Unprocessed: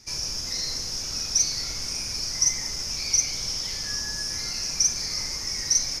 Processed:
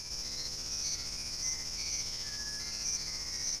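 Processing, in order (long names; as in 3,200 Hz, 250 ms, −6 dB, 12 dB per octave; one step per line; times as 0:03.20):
spectrum averaged block by block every 200 ms
time stretch by overlap-add 0.6×, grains 134 ms
level −5.5 dB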